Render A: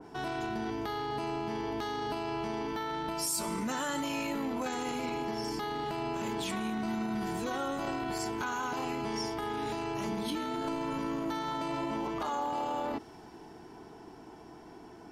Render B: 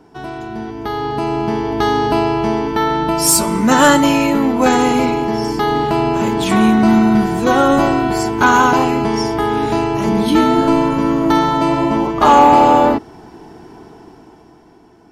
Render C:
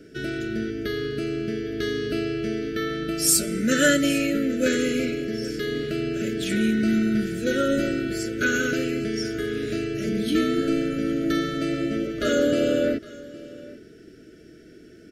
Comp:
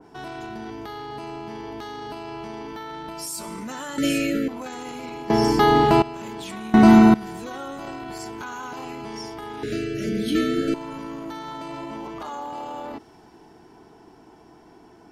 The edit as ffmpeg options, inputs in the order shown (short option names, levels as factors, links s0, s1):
-filter_complex "[2:a]asplit=2[s0][s1];[1:a]asplit=2[s2][s3];[0:a]asplit=5[s4][s5][s6][s7][s8];[s4]atrim=end=3.982[s9];[s0]atrim=start=3.978:end=4.482[s10];[s5]atrim=start=4.478:end=5.302[s11];[s2]atrim=start=5.298:end=6.022[s12];[s6]atrim=start=6.018:end=6.742[s13];[s3]atrim=start=6.738:end=7.142[s14];[s7]atrim=start=7.138:end=9.632[s15];[s1]atrim=start=9.628:end=10.742[s16];[s8]atrim=start=10.738[s17];[s9][s10]acrossfade=d=0.004:c1=hsin:c2=hsin[s18];[s18][s11]acrossfade=d=0.004:c1=hsin:c2=hsin[s19];[s19][s12]acrossfade=d=0.004:c1=hsin:c2=hsin[s20];[s20][s13]acrossfade=d=0.004:c1=hsin:c2=hsin[s21];[s21][s14]acrossfade=d=0.004:c1=hsin:c2=hsin[s22];[s22][s15]acrossfade=d=0.004:c1=hsin:c2=hsin[s23];[s23][s16]acrossfade=d=0.004:c1=hsin:c2=hsin[s24];[s24][s17]acrossfade=d=0.004:c1=hsin:c2=hsin"